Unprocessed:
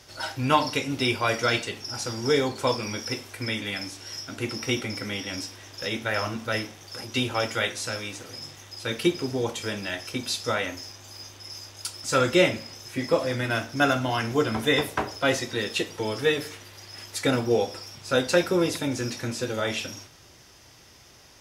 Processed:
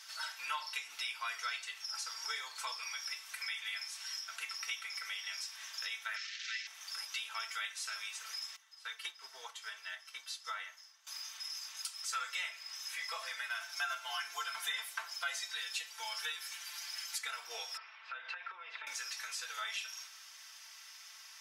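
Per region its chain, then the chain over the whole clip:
6.16–6.67 s: one-bit delta coder 32 kbps, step -26 dBFS + elliptic band-stop 180–1800 Hz
8.56–11.07 s: treble shelf 3.2 kHz -6 dB + band-stop 2.5 kHz, Q 11 + upward expansion, over -47 dBFS
13.60–17.18 s: tone controls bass +13 dB, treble +3 dB + comb 5.8 ms, depth 81%
17.77–18.87 s: low-pass 2.7 kHz 24 dB/octave + compression, threshold -32 dBFS
whole clip: high-pass 1.1 kHz 24 dB/octave; compression 3:1, threshold -41 dBFS; comb 4.5 ms; trim -1 dB

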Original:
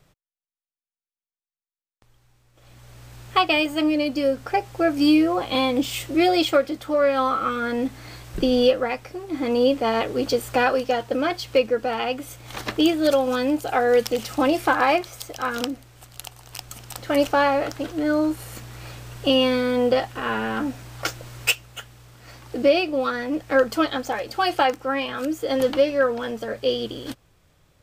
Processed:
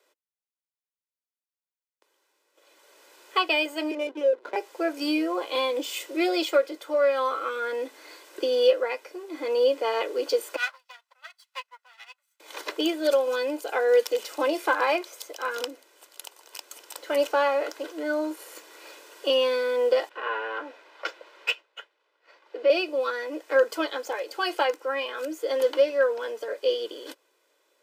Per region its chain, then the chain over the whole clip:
3.91–4.56 s: LPC vocoder at 8 kHz pitch kept + peaking EQ 100 Hz +14.5 dB 2 oct + hysteresis with a dead band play -31.5 dBFS
10.56–12.40 s: comb filter that takes the minimum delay 1.5 ms + high-pass 1 kHz 24 dB/octave + upward expansion 2.5:1, over -40 dBFS
20.09–22.70 s: expander -40 dBFS + three-band isolator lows -16 dB, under 350 Hz, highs -22 dB, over 4.1 kHz
whole clip: steep high-pass 290 Hz 48 dB/octave; comb 2 ms, depth 51%; trim -5 dB

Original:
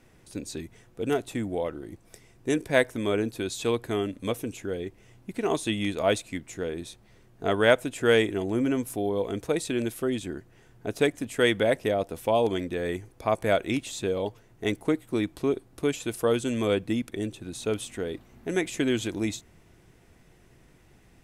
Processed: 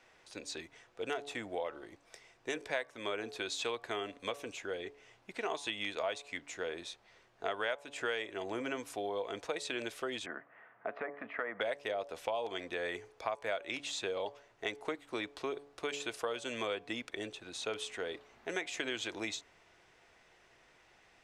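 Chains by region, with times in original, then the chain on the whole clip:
10.26–11.61 s: low-pass that closes with the level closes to 1.2 kHz, closed at -19 dBFS + compression 4:1, threshold -27 dBFS + cabinet simulation 170–2200 Hz, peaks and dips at 220 Hz +5 dB, 370 Hz -6 dB, 650 Hz +6 dB, 1.2 kHz +9 dB, 1.9 kHz +6 dB
whole clip: three-band isolator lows -20 dB, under 510 Hz, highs -21 dB, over 6.7 kHz; de-hum 142.7 Hz, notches 8; compression 6:1, threshold -34 dBFS; trim +1 dB

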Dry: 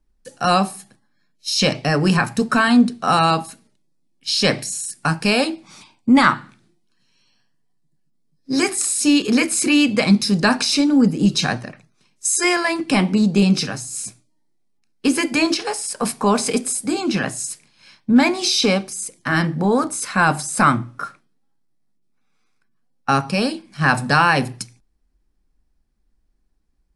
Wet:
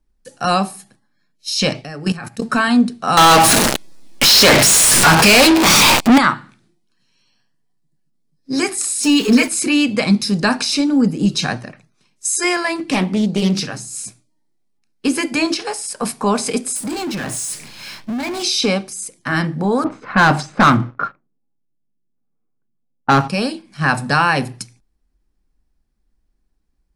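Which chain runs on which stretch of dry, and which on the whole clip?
1.81–2.42 s: band-stop 1 kHz, Q 7.3 + level held to a coarse grid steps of 15 dB + short-mantissa float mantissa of 8-bit
3.17–6.18 s: jump at every zero crossing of -23 dBFS + overdrive pedal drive 36 dB, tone 7.5 kHz, clips at -3 dBFS
9.03–9.48 s: jump at every zero crossing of -27.5 dBFS + comb 4.5 ms, depth 82%
12.76–13.88 s: hum notches 50/100/150/200/250/300/350/400 Hz + loudspeaker Doppler distortion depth 0.28 ms
16.76–18.43 s: compression 5:1, threshold -26 dBFS + power-law waveshaper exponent 0.5
19.84–23.28 s: low-pass 4.8 kHz + waveshaping leveller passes 2 + level-controlled noise filter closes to 500 Hz, open at -10 dBFS
whole clip: none

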